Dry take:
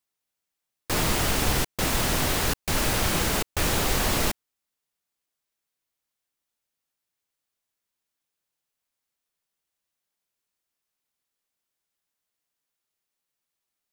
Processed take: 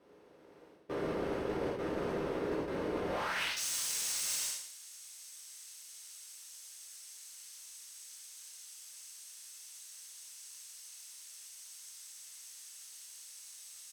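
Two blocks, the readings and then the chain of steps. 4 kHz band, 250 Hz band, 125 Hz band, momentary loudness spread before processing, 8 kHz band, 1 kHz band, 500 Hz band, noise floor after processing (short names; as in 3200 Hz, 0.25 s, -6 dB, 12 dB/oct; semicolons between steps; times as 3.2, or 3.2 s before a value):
-11.5 dB, -8.5 dB, -17.5 dB, 3 LU, -6.5 dB, -11.5 dB, -4.5 dB, -59 dBFS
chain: per-bin compression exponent 0.6; on a send: feedback echo 0.112 s, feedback 28%, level -14 dB; on the sum: band-pass sweep 400 Hz -> 7300 Hz, 3.03–3.62; AGC gain up to 3.5 dB; soft clip -30.5 dBFS, distortion -10 dB; notch 7100 Hz, Q 10; non-linear reverb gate 0.22 s falling, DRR -7 dB; reverse; compressor 6:1, threshold -40 dBFS, peak gain reduction 16 dB; reverse; gain +6 dB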